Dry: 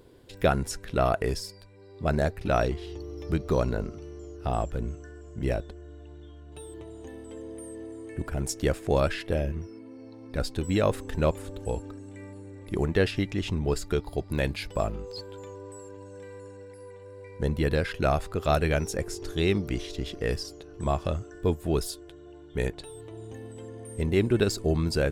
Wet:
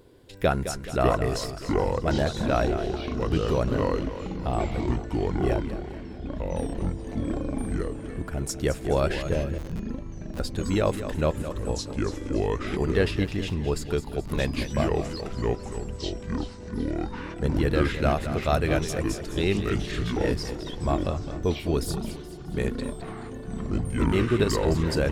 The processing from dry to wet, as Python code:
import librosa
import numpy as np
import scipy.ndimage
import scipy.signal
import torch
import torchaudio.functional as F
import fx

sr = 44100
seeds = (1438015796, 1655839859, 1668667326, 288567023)

y = fx.echo_feedback(x, sr, ms=213, feedback_pct=48, wet_db=-11.0)
y = fx.schmitt(y, sr, flips_db=-31.5, at=(9.58, 10.4))
y = fx.echo_pitch(y, sr, ms=452, semitones=-5, count=3, db_per_echo=-3.0)